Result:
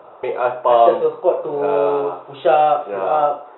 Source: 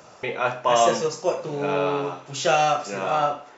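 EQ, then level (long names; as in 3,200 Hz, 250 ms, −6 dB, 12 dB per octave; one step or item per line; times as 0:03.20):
dynamic equaliser 1,100 Hz, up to −5 dB, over −34 dBFS, Q 2.1
linear-phase brick-wall low-pass 3,900 Hz
flat-topped bell 650 Hz +13.5 dB 2.3 octaves
−5.5 dB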